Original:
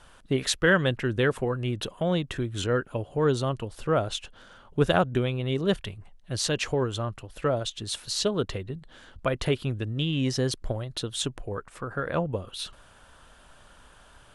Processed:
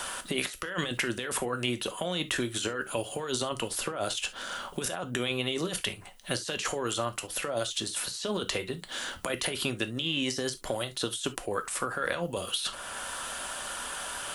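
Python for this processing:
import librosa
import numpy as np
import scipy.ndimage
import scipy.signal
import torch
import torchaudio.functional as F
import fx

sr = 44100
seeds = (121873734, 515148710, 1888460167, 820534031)

y = fx.riaa(x, sr, side='recording')
y = fx.over_compress(y, sr, threshold_db=-33.0, ratio=-1.0)
y = fx.rev_gated(y, sr, seeds[0], gate_ms=90, shape='falling', drr_db=8.0)
y = fx.band_squash(y, sr, depth_pct=70)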